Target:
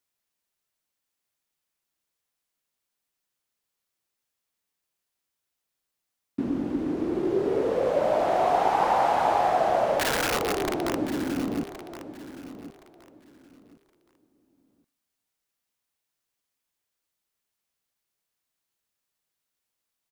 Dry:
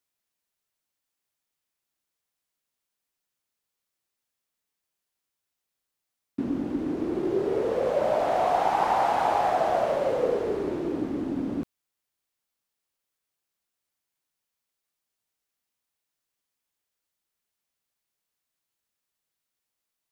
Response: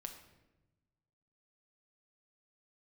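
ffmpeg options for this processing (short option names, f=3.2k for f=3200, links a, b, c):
-filter_complex "[0:a]asettb=1/sr,asplit=3[a][b][c];[a]atrim=end=9.994[d];[b]atrim=start=9.99:end=10.95,asetpts=PTS-STARTPTS,afade=t=in:d=0.004:c=qsin,afade=t=out:st=0.956:d=0.004:c=qsin,aeval=exprs='(mod(12.6*val(0)+1,2)-1)/12.6':c=same[e];[c]atrim=start=10.946[f];[d][e]acrossfade=d=0.004:c1=hsin:c2=qsin[g];[g][f]acrossfade=d=0.004:c1=qsin:c2=hsin,aecho=1:1:1070|2140|3210:0.224|0.0515|0.0118,asplit=2[h][i];[1:a]atrim=start_sample=2205[j];[i][j]afir=irnorm=-1:irlink=0,volume=-14.5dB[k];[h][k]amix=inputs=2:normalize=0"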